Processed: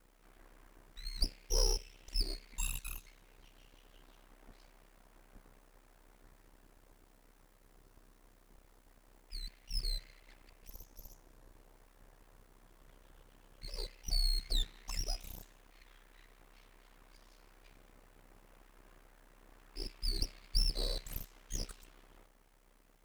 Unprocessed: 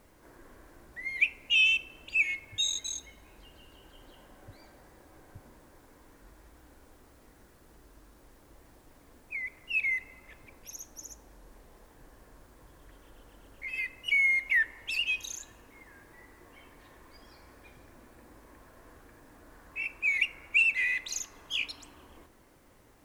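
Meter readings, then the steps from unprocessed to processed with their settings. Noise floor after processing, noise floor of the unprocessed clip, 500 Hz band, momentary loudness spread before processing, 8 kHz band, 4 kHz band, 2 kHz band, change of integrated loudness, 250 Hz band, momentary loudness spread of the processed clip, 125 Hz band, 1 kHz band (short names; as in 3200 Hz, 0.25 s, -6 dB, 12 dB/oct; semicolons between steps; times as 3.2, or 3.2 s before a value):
-66 dBFS, -59 dBFS, +4.5 dB, 20 LU, -5.0 dB, -6.0 dB, -29.0 dB, -11.5 dB, -0.5 dB, 20 LU, n/a, -2.5 dB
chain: full-wave rectifier; ring modulator 32 Hz; gain -3 dB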